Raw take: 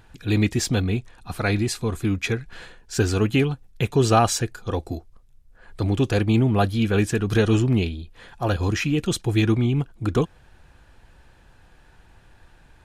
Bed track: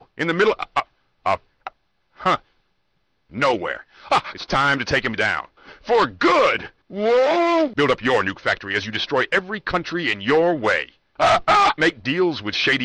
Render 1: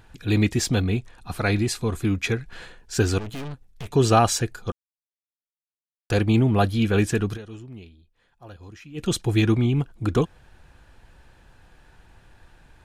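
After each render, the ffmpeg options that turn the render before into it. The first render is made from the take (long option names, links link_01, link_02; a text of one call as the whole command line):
ffmpeg -i in.wav -filter_complex "[0:a]asettb=1/sr,asplit=3[link_01][link_02][link_03];[link_01]atrim=end=3.184[link_04];[link_02]atrim=start=3.18:end=3.91,asetpts=PTS-STARTPTS,afade=type=in:duration=0.004:curve=qsin,afade=type=out:start_time=0.726:duration=0.004:curve=qsin,aeval=exprs='(tanh(39.8*val(0)+0.65)-tanh(0.65))/39.8':channel_layout=same[link_05];[link_03]atrim=start=3.906[link_06];[link_04][link_05]acrossfade=duration=0.004:curve1=hsin:curve2=qsin[link_07];[link_07][link_06]acrossfade=duration=0.004:curve1=qsin:curve2=hsin,asplit=5[link_08][link_09][link_10][link_11][link_12];[link_08]atrim=end=4.72,asetpts=PTS-STARTPTS,afade=type=out:start_time=4.716:duration=0.004:curve=hsin[link_13];[link_09]atrim=start=4.72:end=6.1,asetpts=PTS-STARTPTS,volume=0[link_14];[link_10]atrim=start=6.1:end=7.38,asetpts=PTS-STARTPTS,afade=type=in:duration=0.004:curve=hsin,afade=type=out:start_time=1.15:duration=0.13:silence=0.0944061[link_15];[link_11]atrim=start=7.38:end=8.94,asetpts=PTS-STARTPTS,volume=-20.5dB[link_16];[link_12]atrim=start=8.94,asetpts=PTS-STARTPTS,afade=type=in:duration=0.13:silence=0.0944061[link_17];[link_13][link_14][link_15][link_16][link_17]concat=n=5:v=0:a=1" out.wav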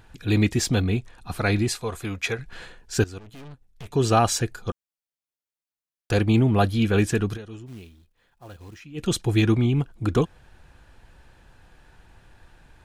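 ffmpeg -i in.wav -filter_complex "[0:a]asettb=1/sr,asplit=3[link_01][link_02][link_03];[link_01]atrim=end=1.764[link_04];[link_02]atrim=start=1.76:end=2.39,asetpts=PTS-STARTPTS,afade=type=in:duration=0.004:curve=qsin,afade=type=out:start_time=0.626:duration=0.004:curve=qsin,lowshelf=frequency=410:width_type=q:width=1.5:gain=-7.5[link_05];[link_03]atrim=start=2.386[link_06];[link_04][link_05]acrossfade=duration=0.004:curve1=hsin:curve2=qsin[link_07];[link_07][link_06]acrossfade=duration=0.004:curve1=qsin:curve2=hsin,asplit=3[link_08][link_09][link_10];[link_08]afade=type=out:start_time=7.66:duration=0.02[link_11];[link_09]acrusher=bits=4:mode=log:mix=0:aa=0.000001,afade=type=in:start_time=7.66:duration=0.02,afade=type=out:start_time=8.79:duration=0.02[link_12];[link_10]afade=type=in:start_time=8.79:duration=0.02[link_13];[link_11][link_12][link_13]amix=inputs=3:normalize=0,asplit=2[link_14][link_15];[link_14]atrim=end=3.04,asetpts=PTS-STARTPTS,afade=type=out:start_time=3.036:duration=0.004:curve=hsin:silence=0.11885[link_16];[link_15]atrim=start=3.04,asetpts=PTS-STARTPTS,afade=type=in:duration=1.42:silence=0.11885[link_17];[link_16][link_17]concat=n=2:v=0:a=1" out.wav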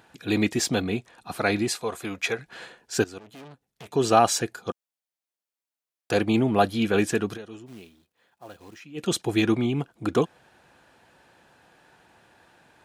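ffmpeg -i in.wav -af "highpass=200,equalizer=frequency=680:width_type=o:width=0.77:gain=3" out.wav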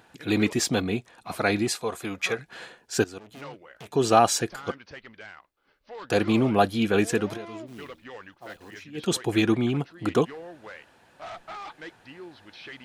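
ffmpeg -i in.wav -i bed.wav -filter_complex "[1:a]volume=-24dB[link_01];[0:a][link_01]amix=inputs=2:normalize=0" out.wav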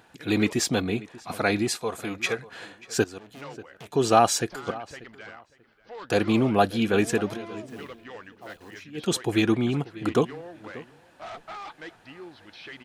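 ffmpeg -i in.wav -filter_complex "[0:a]asplit=2[link_01][link_02];[link_02]adelay=588,lowpass=frequency=3300:poles=1,volume=-19dB,asplit=2[link_03][link_04];[link_04]adelay=588,lowpass=frequency=3300:poles=1,volume=0.22[link_05];[link_01][link_03][link_05]amix=inputs=3:normalize=0" out.wav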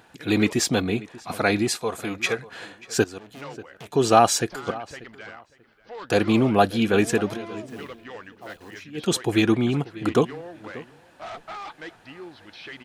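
ffmpeg -i in.wav -af "volume=2.5dB" out.wav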